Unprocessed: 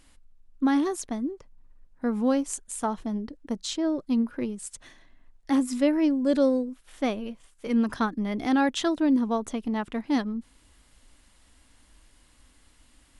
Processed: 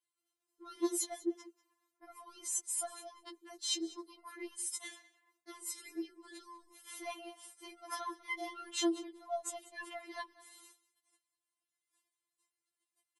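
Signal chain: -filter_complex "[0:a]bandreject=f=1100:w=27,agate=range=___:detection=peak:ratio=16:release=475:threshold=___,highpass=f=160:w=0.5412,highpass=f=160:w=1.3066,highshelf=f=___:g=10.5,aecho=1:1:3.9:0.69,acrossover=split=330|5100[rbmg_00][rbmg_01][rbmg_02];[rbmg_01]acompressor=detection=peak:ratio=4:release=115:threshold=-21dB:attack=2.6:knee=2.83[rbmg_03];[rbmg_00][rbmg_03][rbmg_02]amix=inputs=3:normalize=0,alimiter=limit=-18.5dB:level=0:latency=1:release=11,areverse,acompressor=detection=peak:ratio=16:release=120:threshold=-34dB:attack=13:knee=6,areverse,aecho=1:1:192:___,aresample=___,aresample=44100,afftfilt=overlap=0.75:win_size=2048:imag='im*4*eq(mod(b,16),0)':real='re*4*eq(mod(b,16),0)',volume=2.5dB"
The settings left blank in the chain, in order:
-34dB, -50dB, 8000, 0.1, 32000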